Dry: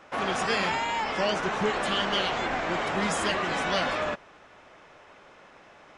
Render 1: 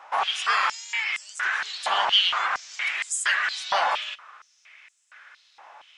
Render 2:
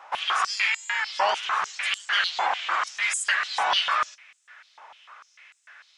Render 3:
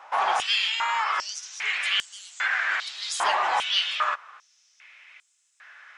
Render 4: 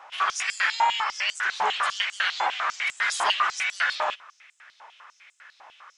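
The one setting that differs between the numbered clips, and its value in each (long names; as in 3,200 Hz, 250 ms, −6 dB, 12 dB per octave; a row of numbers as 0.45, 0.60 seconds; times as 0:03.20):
high-pass on a step sequencer, speed: 4.3, 6.7, 2.5, 10 Hertz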